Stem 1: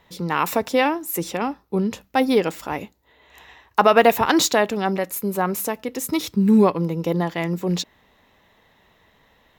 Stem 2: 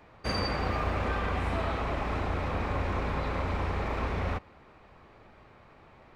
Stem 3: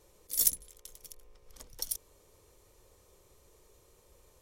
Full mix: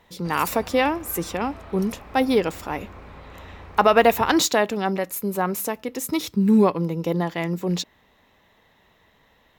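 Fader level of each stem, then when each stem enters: −1.5, −11.5, −11.0 decibels; 0.00, 0.00, 0.00 seconds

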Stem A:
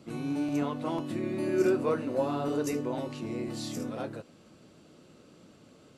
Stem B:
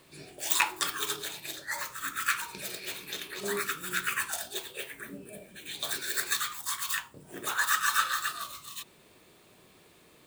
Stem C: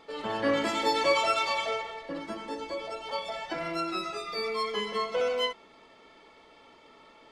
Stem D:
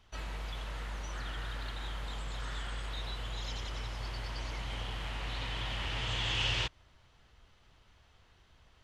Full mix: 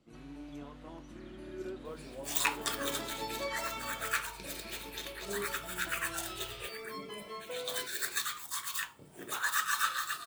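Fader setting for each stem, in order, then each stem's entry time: −16.5, −4.5, −13.5, −16.5 decibels; 0.00, 1.85, 2.35, 0.00 seconds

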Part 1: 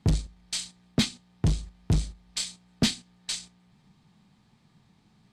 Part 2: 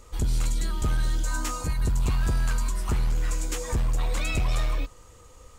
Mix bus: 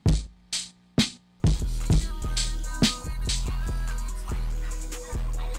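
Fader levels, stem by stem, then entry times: +2.0, −5.0 decibels; 0.00, 1.40 seconds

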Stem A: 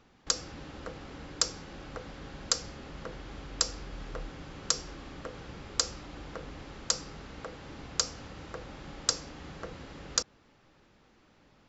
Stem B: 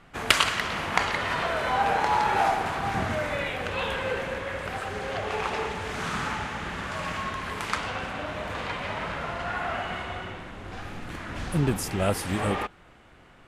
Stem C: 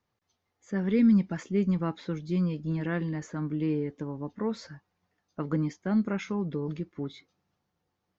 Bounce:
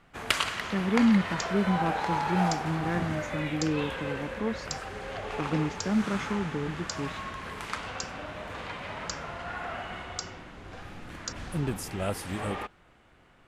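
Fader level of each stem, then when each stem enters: −9.0, −6.0, −0.5 decibels; 1.10, 0.00, 0.00 seconds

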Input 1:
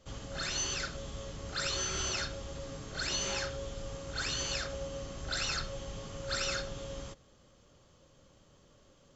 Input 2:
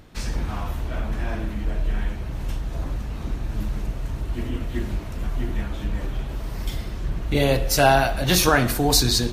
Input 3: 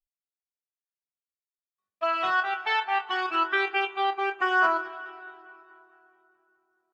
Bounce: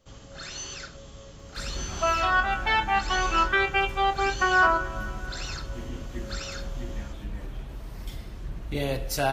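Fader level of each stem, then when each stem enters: −3.0, −9.0, +2.0 decibels; 0.00, 1.40, 0.00 seconds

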